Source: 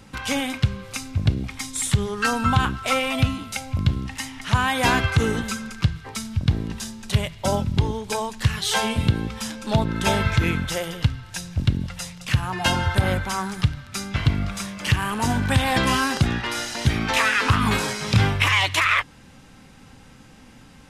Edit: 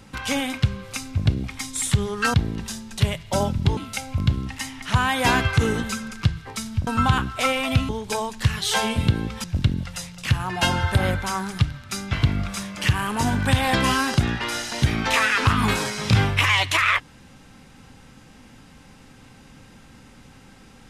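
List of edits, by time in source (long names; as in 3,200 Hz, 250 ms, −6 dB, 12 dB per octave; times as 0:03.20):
0:02.34–0:03.36: swap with 0:06.46–0:07.89
0:09.44–0:11.47: remove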